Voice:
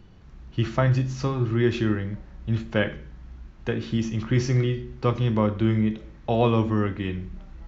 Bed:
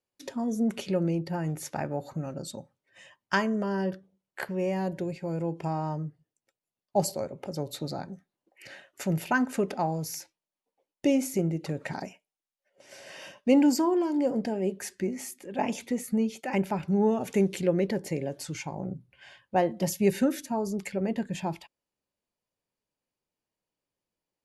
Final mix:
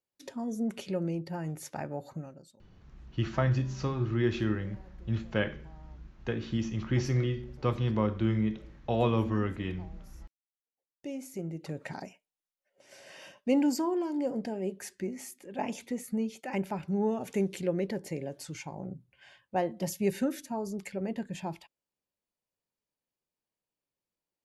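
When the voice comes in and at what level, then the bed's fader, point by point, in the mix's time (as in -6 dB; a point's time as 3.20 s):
2.60 s, -6.0 dB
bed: 2.17 s -5 dB
2.63 s -26.5 dB
10.38 s -26.5 dB
11.74 s -5 dB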